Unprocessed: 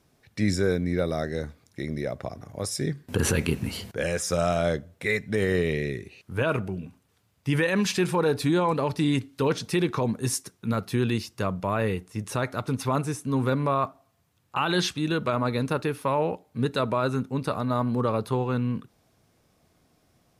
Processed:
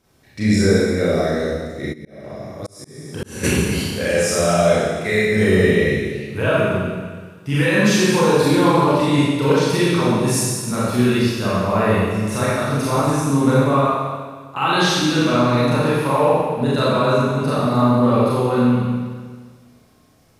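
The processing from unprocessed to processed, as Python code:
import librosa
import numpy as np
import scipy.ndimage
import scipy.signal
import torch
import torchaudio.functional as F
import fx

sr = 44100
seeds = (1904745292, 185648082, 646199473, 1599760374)

y = fx.rev_schroeder(x, sr, rt60_s=1.6, comb_ms=29, drr_db=-9.0)
y = fx.auto_swell(y, sr, attack_ms=786.0, at=(1.92, 3.43), fade=0.02)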